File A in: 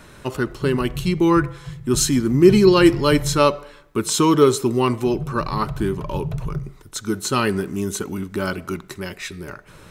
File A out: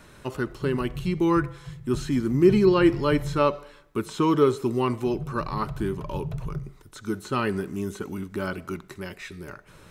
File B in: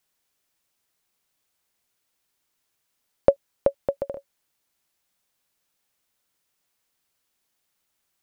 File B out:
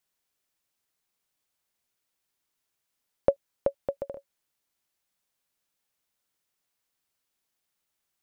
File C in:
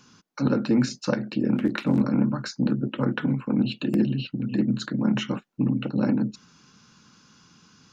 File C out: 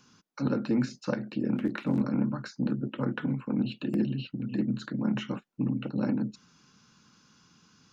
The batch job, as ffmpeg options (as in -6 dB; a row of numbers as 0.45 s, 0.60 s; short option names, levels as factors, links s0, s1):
-filter_complex "[0:a]acrossover=split=2900[s0][s1];[s1]acompressor=threshold=0.0112:ratio=4:attack=1:release=60[s2];[s0][s2]amix=inputs=2:normalize=0,volume=0.531"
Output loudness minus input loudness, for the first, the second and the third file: -6.0 LU, -5.5 LU, -5.5 LU